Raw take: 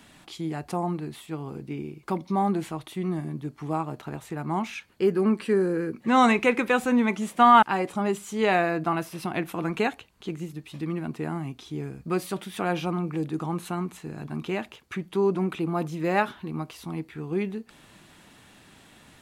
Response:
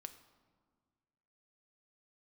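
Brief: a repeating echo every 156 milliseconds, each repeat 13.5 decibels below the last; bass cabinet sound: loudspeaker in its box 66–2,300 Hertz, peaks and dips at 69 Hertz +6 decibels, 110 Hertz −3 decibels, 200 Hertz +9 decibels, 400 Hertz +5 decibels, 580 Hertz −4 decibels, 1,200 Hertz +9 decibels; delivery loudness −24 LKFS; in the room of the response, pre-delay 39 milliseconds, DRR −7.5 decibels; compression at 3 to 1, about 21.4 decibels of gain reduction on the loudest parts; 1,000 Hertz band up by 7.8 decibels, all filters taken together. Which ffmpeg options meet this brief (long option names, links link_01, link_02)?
-filter_complex "[0:a]equalizer=frequency=1000:width_type=o:gain=3.5,acompressor=threshold=-40dB:ratio=3,aecho=1:1:156|312:0.211|0.0444,asplit=2[link_01][link_02];[1:a]atrim=start_sample=2205,adelay=39[link_03];[link_02][link_03]afir=irnorm=-1:irlink=0,volume=12.5dB[link_04];[link_01][link_04]amix=inputs=2:normalize=0,highpass=frequency=66:width=0.5412,highpass=frequency=66:width=1.3066,equalizer=frequency=69:width_type=q:width=4:gain=6,equalizer=frequency=110:width_type=q:width=4:gain=-3,equalizer=frequency=200:width_type=q:width=4:gain=9,equalizer=frequency=400:width_type=q:width=4:gain=5,equalizer=frequency=580:width_type=q:width=4:gain=-4,equalizer=frequency=1200:width_type=q:width=4:gain=9,lowpass=frequency=2300:width=0.5412,lowpass=frequency=2300:width=1.3066,volume=4dB"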